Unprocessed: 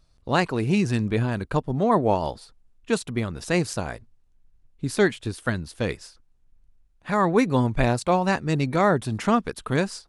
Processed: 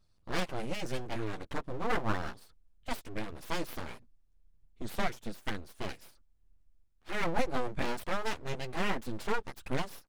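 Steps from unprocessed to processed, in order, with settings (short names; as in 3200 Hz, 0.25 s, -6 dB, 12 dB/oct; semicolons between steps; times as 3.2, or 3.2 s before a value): chorus voices 2, 0.2 Hz, delay 10 ms, depth 2.4 ms; full-wave rectifier; record warp 33 1/3 rpm, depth 250 cents; gain -5.5 dB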